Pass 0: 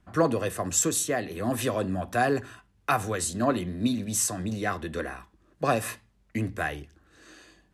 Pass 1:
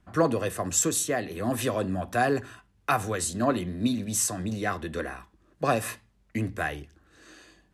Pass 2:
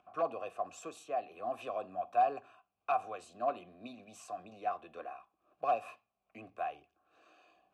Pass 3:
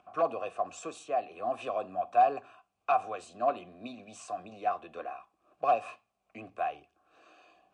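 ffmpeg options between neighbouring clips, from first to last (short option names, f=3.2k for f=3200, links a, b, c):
-af anull
-filter_complex "[0:a]aeval=exprs='0.188*(abs(mod(val(0)/0.188+3,4)-2)-1)':c=same,acompressor=mode=upward:threshold=-43dB:ratio=2.5,asplit=3[a][b][c];[a]bandpass=f=730:t=q:w=8,volume=0dB[d];[b]bandpass=f=1.09k:t=q:w=8,volume=-6dB[e];[c]bandpass=f=2.44k:t=q:w=8,volume=-9dB[f];[d][e][f]amix=inputs=3:normalize=0"
-af "volume=5.5dB" -ar 22050 -c:a libmp3lame -b:a 56k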